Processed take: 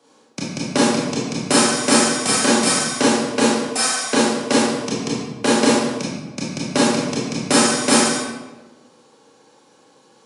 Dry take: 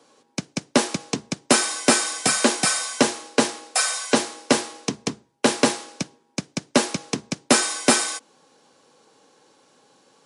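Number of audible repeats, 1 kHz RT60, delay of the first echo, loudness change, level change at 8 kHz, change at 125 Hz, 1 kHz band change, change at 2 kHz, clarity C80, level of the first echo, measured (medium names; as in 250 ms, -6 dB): no echo, 1.1 s, no echo, +4.0 dB, +2.5 dB, +6.5 dB, +4.5 dB, +3.0 dB, 2.5 dB, no echo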